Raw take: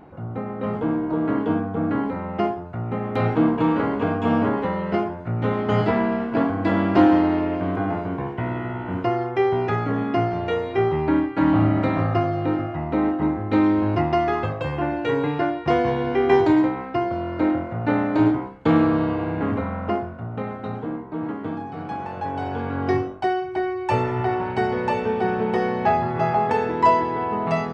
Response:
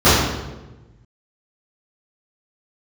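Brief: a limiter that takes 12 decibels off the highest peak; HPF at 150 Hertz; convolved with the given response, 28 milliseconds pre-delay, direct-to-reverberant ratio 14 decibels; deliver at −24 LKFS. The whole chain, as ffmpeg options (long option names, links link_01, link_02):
-filter_complex "[0:a]highpass=150,alimiter=limit=-16dB:level=0:latency=1,asplit=2[link_01][link_02];[1:a]atrim=start_sample=2205,adelay=28[link_03];[link_02][link_03]afir=irnorm=-1:irlink=0,volume=-42.5dB[link_04];[link_01][link_04]amix=inputs=2:normalize=0,volume=1dB"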